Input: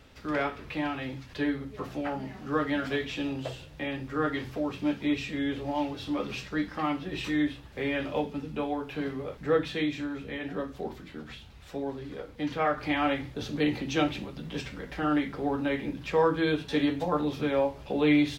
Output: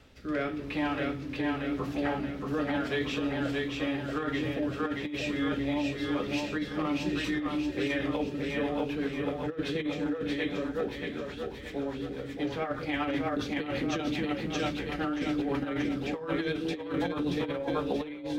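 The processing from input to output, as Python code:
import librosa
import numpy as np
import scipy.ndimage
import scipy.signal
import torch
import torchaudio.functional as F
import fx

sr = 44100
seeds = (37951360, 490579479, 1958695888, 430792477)

y = fx.rotary_switch(x, sr, hz=0.9, then_hz=8.0, switch_at_s=7.05)
y = fx.hum_notches(y, sr, base_hz=50, count=3)
y = fx.echo_split(y, sr, split_hz=360.0, low_ms=231, high_ms=629, feedback_pct=52, wet_db=-3.0)
y = fx.over_compress(y, sr, threshold_db=-29.0, ratio=-0.5)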